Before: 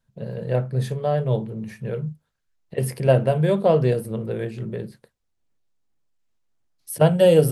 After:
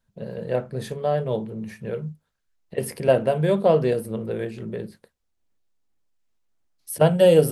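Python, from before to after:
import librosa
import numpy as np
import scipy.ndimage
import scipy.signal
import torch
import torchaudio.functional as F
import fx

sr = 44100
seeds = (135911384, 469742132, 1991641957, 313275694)

y = fx.peak_eq(x, sr, hz=130.0, db=-11.5, octaves=0.26)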